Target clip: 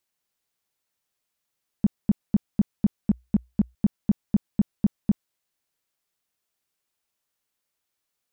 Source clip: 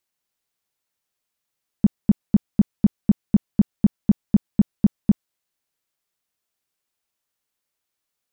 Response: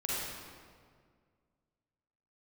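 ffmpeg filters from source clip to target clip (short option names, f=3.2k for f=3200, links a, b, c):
-filter_complex "[0:a]asettb=1/sr,asplit=3[a][b][c];[a]atrim=end=2.964[d];[b]atrim=start=2.96:end=3.75,asetpts=PTS-STARTPTS,afade=t=in:d=0.004:c=qsin,afade=t=out:st=0.786:d=0.004:c=qsin,equalizer=f=61:w=6.4:g=4[e];[c]atrim=start=3.746[f];[d][e]acrossfade=d=0.004:c1=hsin:c2=qsin[g];[g][f]acrossfade=d=0.004:c1=qsin:c2=hsin,alimiter=limit=-13dB:level=0:latency=1:release=17"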